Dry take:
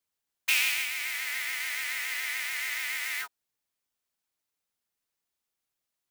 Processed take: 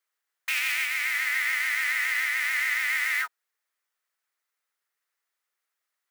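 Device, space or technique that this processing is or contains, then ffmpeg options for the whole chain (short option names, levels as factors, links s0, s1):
laptop speaker: -af "highpass=230,highpass=f=360:w=0.5412,highpass=f=360:w=1.3066,equalizer=f=1300:t=o:w=0.56:g=7.5,equalizer=f=1900:t=o:w=0.51:g=8.5,alimiter=limit=0.15:level=0:latency=1:release=59"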